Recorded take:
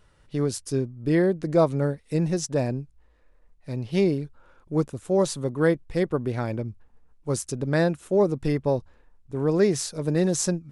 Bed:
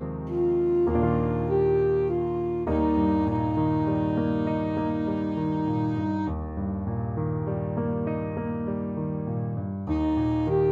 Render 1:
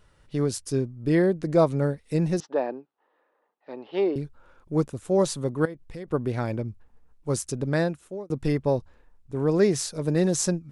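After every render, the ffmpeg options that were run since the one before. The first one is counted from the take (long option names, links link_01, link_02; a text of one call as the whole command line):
ffmpeg -i in.wav -filter_complex "[0:a]asettb=1/sr,asplit=3[link_01][link_02][link_03];[link_01]atrim=end=2.404[link_04];[link_02]atrim=start=2.4:end=4.16,asetpts=PTS-STARTPTS,afade=type=in:duration=0.004:curve=qsin,afade=type=out:start_time=1.756:duration=0.004:curve=qsin,highpass=frequency=310:width=0.5412,highpass=frequency=310:width=1.3066,equalizer=frequency=830:width_type=q:width=4:gain=7,equalizer=frequency=1200:width_type=q:width=4:gain=4,equalizer=frequency=2300:width_type=q:width=4:gain=-7,lowpass=frequency=3300:width=0.5412,lowpass=frequency=3300:width=1.3066[link_05];[link_03]atrim=start=4.156[link_06];[link_04][link_05]acrossfade=duration=0.004:curve1=hsin:curve2=qsin[link_07];[link_07][link_06]acrossfade=duration=0.004:curve1=qsin:curve2=hsin,asettb=1/sr,asplit=3[link_08][link_09][link_10];[link_08]atrim=end=5.654[link_11];[link_09]atrim=start=5.65:end=6.08,asetpts=PTS-STARTPTS,afade=type=in:duration=0.004:curve=qsin,afade=type=out:start_time=0.426:duration=0.004:curve=qsin,acompressor=threshold=-36dB:ratio=4:attack=3.2:release=140:knee=1:detection=peak[link_12];[link_10]atrim=start=6.076[link_13];[link_11][link_12]acrossfade=duration=0.004:curve1=hsin:curve2=qsin[link_14];[link_14][link_13]acrossfade=duration=0.004:curve1=qsin:curve2=hsin,asplit=2[link_15][link_16];[link_15]atrim=end=8.3,asetpts=PTS-STARTPTS,afade=type=out:start_time=7.65:duration=0.65[link_17];[link_16]atrim=start=8.3,asetpts=PTS-STARTPTS,afade=type=in:duration=0.004:curve=hsin[link_18];[link_17][link_18]concat=n=2:v=0:a=1" out.wav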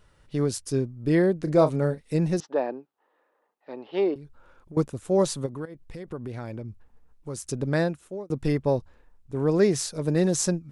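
ffmpeg -i in.wav -filter_complex "[0:a]asettb=1/sr,asplit=3[link_01][link_02][link_03];[link_01]atrim=end=1.424[link_04];[link_02]atrim=start=1.42:end=2.02,asetpts=PTS-STARTPTS,afade=type=in:duration=0.004:curve=qsin,afade=type=out:start_time=0.596:duration=0.004:curve=qsin,asplit=2[link_05][link_06];[link_06]adelay=33,volume=-11dB[link_07];[link_05][link_07]amix=inputs=2:normalize=0,atrim=end_sample=26460[link_08];[link_03]atrim=start=2.016[link_09];[link_04][link_08]acrossfade=duration=0.004:curve1=hsin:curve2=qsin[link_10];[link_10][link_09]acrossfade=duration=0.004:curve1=qsin:curve2=hsin,asettb=1/sr,asplit=3[link_11][link_12][link_13];[link_11]atrim=end=4.144[link_14];[link_12]atrim=start=4.14:end=4.77,asetpts=PTS-STARTPTS,afade=type=in:duration=0.004:curve=qsin,afade=type=out:start_time=0.626:duration=0.004:curve=qsin,acompressor=threshold=-39dB:ratio=8:attack=3.2:release=140:knee=1:detection=peak[link_15];[link_13]atrim=start=4.766[link_16];[link_14][link_15]acrossfade=duration=0.004:curve1=hsin:curve2=qsin[link_17];[link_17][link_16]acrossfade=duration=0.004:curve1=qsin:curve2=hsin,asplit=3[link_18][link_19][link_20];[link_18]afade=type=out:start_time=5.45:duration=0.02[link_21];[link_19]acompressor=threshold=-33dB:ratio=3:attack=3.2:release=140:knee=1:detection=peak,afade=type=in:start_time=5.45:duration=0.02,afade=type=out:start_time=7.44:duration=0.02[link_22];[link_20]afade=type=in:start_time=7.44:duration=0.02[link_23];[link_21][link_22][link_23]amix=inputs=3:normalize=0" out.wav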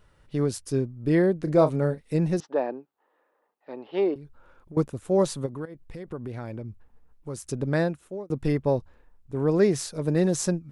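ffmpeg -i in.wav -af "equalizer=frequency=6400:width_type=o:width=1.8:gain=-4" out.wav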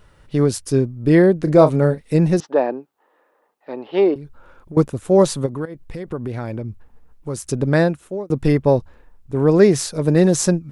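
ffmpeg -i in.wav -af "volume=8.5dB,alimiter=limit=-1dB:level=0:latency=1" out.wav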